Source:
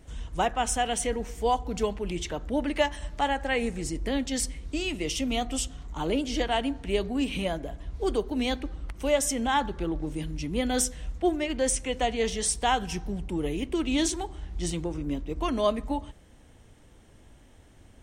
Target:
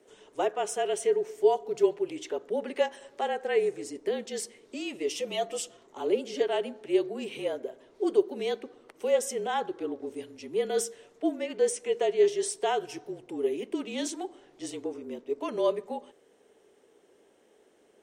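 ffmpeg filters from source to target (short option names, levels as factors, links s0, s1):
-filter_complex "[0:a]highpass=f=450:t=q:w=4.9,asettb=1/sr,asplit=3[s0][s1][s2];[s0]atrim=end=5.104[s3];[s1]atrim=start=5.1:end=5.77,asetpts=PTS-STARTPTS,afade=t=in:d=0.004:c=qsin,afade=t=out:st=0.666:d=0.004:c=qsin,aecho=1:1:5.4:0.88,atrim=end_sample=29547[s4];[s2]atrim=start=5.766[s5];[s3][s4]acrossfade=d=0.004:c1=hsin:c2=qsin[s6];[s6][s5]acrossfade=d=0.004:c1=qsin:c2=hsin,afreqshift=-40,volume=0.447"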